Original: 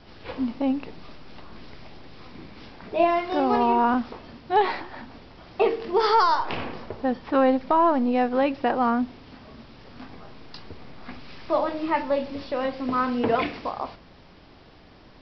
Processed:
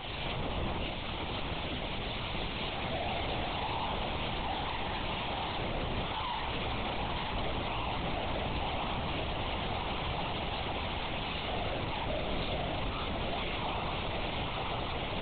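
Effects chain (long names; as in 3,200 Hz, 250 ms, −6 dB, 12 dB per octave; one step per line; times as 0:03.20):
spectrum averaged block by block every 50 ms
in parallel at −2 dB: output level in coarse steps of 14 dB
on the sum: fuzz pedal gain 47 dB, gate −47 dBFS
high-pass filter 1,200 Hz 6 dB per octave
on a send: feedback delay with all-pass diffusion 913 ms, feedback 72%, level −5 dB
on the sum: linear-prediction vocoder at 8 kHz whisper
brickwall limiter −16.5 dBFS, peak gain reduction 10.5 dB
parametric band 1,600 Hz −12 dB 0.87 octaves
level −7 dB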